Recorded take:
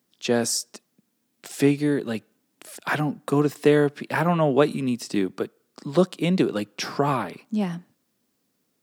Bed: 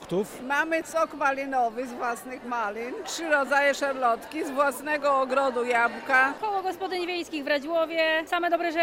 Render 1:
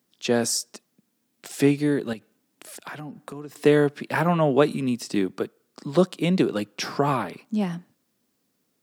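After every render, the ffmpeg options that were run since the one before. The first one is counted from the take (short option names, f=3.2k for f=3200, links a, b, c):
-filter_complex "[0:a]asettb=1/sr,asplit=3[a][b][c];[a]atrim=end=2.134[d];[b]atrim=start=2.13:end=3.56,asetpts=PTS-STARTPTS,afade=t=in:d=0.004:c=qsin,afade=t=out:st=1.426:d=0.004:c=qsin,acompressor=threshold=-34dB:ratio=6:attack=3.2:release=140:knee=1:detection=peak[e];[c]atrim=start=3.556[f];[d][e]acrossfade=d=0.004:c1=hsin:c2=qsin[g];[g][f]acrossfade=d=0.004:c1=qsin:c2=hsin"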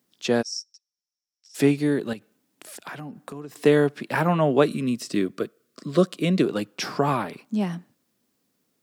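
-filter_complex "[0:a]asplit=3[a][b][c];[a]afade=t=out:st=0.41:d=0.02[d];[b]bandpass=f=5.5k:t=q:w=13,afade=t=in:st=0.41:d=0.02,afade=t=out:st=1.54:d=0.02[e];[c]afade=t=in:st=1.54:d=0.02[f];[d][e][f]amix=inputs=3:normalize=0,asettb=1/sr,asplit=3[g][h][i];[g]atrim=end=4.644[j];[h]atrim=start=4.64:end=6.45,asetpts=PTS-STARTPTS,afade=t=in:d=0.004:c=qsin,afade=t=out:st=1.806:d=0.004:c=qsin,asuperstop=centerf=850:order=12:qfactor=2.9[k];[i]atrim=start=6.446[l];[j][k]acrossfade=d=0.004:c1=hsin:c2=qsin[m];[m][l]acrossfade=d=0.004:c1=qsin:c2=hsin"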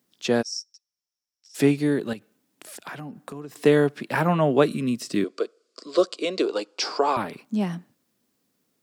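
-filter_complex "[0:a]asettb=1/sr,asplit=3[a][b][c];[a]atrim=end=5.244[d];[b]atrim=start=5.24:end=7.17,asetpts=PTS-STARTPTS,afade=t=in:d=0.004:c=qsin,afade=t=out:st=1.926:d=0.004:c=qsin,highpass=f=340:w=0.5412,highpass=f=340:w=1.3066,equalizer=f=480:t=q:w=4:g=4,equalizer=f=900:t=q:w=4:g=4,equalizer=f=1.8k:t=q:w=4:g=-6,equalizer=f=4.7k:t=q:w=4:g=9,equalizer=f=7.4k:t=q:w=4:g=3,lowpass=f=8.4k:w=0.5412,lowpass=f=8.4k:w=1.3066[e];[c]atrim=start=7.166[f];[d][e]acrossfade=d=0.004:c1=hsin:c2=qsin[g];[g][f]acrossfade=d=0.004:c1=qsin:c2=hsin"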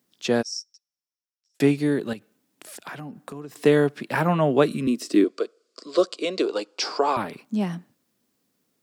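-filter_complex "[0:a]asettb=1/sr,asplit=3[a][b][c];[a]atrim=end=4.874[d];[b]atrim=start=4.87:end=5.28,asetpts=PTS-STARTPTS,afade=t=in:d=0.004:c=qsin,afade=t=out:st=0.406:d=0.004:c=qsin,highpass=f=310:t=q:w=2.5[e];[c]atrim=start=5.276[f];[d][e]acrossfade=d=0.004:c1=hsin:c2=qsin[g];[g][f]acrossfade=d=0.004:c1=qsin:c2=hsin,asplit=2[h][i];[h]atrim=end=1.6,asetpts=PTS-STARTPTS,afade=t=out:st=0.53:d=1.07[j];[i]atrim=start=1.6,asetpts=PTS-STARTPTS,afade=t=in:d=0.004:c=hsin[k];[j][k]concat=n=2:v=0:a=1"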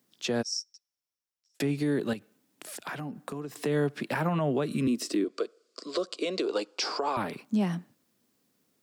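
-filter_complex "[0:a]acrossover=split=160[a][b];[b]acompressor=threshold=-21dB:ratio=6[c];[a][c]amix=inputs=2:normalize=0,alimiter=limit=-19dB:level=0:latency=1:release=113"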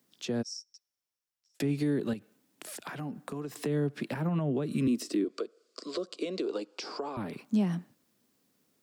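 -filter_complex "[0:a]acrossover=split=400[a][b];[b]acompressor=threshold=-38dB:ratio=10[c];[a][c]amix=inputs=2:normalize=0"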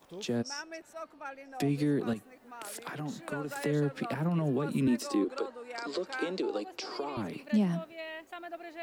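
-filter_complex "[1:a]volume=-18dB[a];[0:a][a]amix=inputs=2:normalize=0"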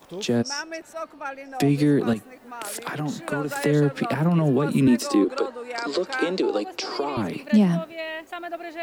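-af "volume=9.5dB"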